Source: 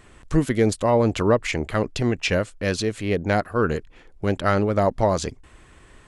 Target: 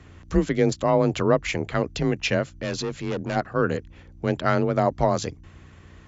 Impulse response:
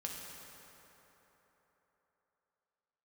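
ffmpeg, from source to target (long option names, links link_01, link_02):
-filter_complex "[0:a]aeval=exprs='val(0)+0.00447*(sin(2*PI*60*n/s)+sin(2*PI*2*60*n/s)/2+sin(2*PI*3*60*n/s)/3+sin(2*PI*4*60*n/s)/4+sin(2*PI*5*60*n/s)/5)':channel_layout=same,asplit=3[link_01][link_02][link_03];[link_01]afade=type=out:start_time=2.49:duration=0.02[link_04];[link_02]asoftclip=type=hard:threshold=-23dB,afade=type=in:start_time=2.49:duration=0.02,afade=type=out:start_time=3.35:duration=0.02[link_05];[link_03]afade=type=in:start_time=3.35:duration=0.02[link_06];[link_04][link_05][link_06]amix=inputs=3:normalize=0,afreqshift=28,volume=-1.5dB" -ar 24000 -c:a mp2 -b:a 96k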